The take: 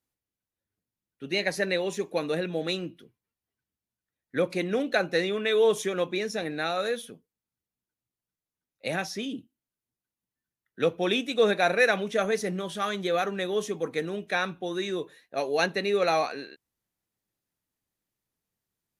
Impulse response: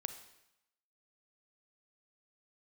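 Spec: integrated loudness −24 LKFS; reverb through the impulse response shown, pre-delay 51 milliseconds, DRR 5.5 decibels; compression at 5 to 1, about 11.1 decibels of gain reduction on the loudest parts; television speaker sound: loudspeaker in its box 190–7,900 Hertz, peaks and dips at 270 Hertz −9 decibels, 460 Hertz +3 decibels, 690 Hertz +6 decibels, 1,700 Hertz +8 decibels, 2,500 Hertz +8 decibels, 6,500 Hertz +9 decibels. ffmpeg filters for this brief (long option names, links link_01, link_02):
-filter_complex "[0:a]acompressor=threshold=-30dB:ratio=5,asplit=2[link_01][link_02];[1:a]atrim=start_sample=2205,adelay=51[link_03];[link_02][link_03]afir=irnorm=-1:irlink=0,volume=-4dB[link_04];[link_01][link_04]amix=inputs=2:normalize=0,highpass=frequency=190:width=0.5412,highpass=frequency=190:width=1.3066,equalizer=frequency=270:width_type=q:width=4:gain=-9,equalizer=frequency=460:width_type=q:width=4:gain=3,equalizer=frequency=690:width_type=q:width=4:gain=6,equalizer=frequency=1700:width_type=q:width=4:gain=8,equalizer=frequency=2500:width_type=q:width=4:gain=8,equalizer=frequency=6500:width_type=q:width=4:gain=9,lowpass=frequency=7900:width=0.5412,lowpass=frequency=7900:width=1.3066,volume=6dB"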